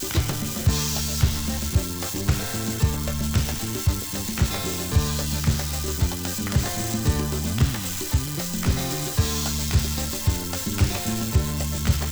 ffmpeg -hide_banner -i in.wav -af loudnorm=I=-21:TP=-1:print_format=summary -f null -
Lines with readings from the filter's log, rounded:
Input Integrated:    -24.6 LUFS
Input True Peak:      -7.2 dBTP
Input LRA:             0.6 LU
Input Threshold:     -34.6 LUFS